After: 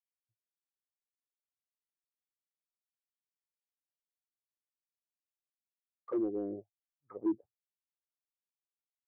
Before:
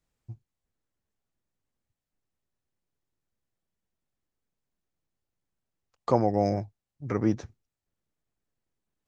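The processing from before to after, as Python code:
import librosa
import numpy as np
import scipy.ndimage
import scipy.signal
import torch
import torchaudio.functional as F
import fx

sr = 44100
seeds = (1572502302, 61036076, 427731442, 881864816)

y = fx.low_shelf(x, sr, hz=160.0, db=9.0)
y = fx.auto_wah(y, sr, base_hz=360.0, top_hz=2400.0, q=4.6, full_db=-18.0, direction='down')
y = np.clip(y, -10.0 ** (-27.5 / 20.0), 10.0 ** (-27.5 / 20.0))
y = fx.spectral_expand(y, sr, expansion=1.5)
y = F.gain(torch.from_numpy(y), 3.0).numpy()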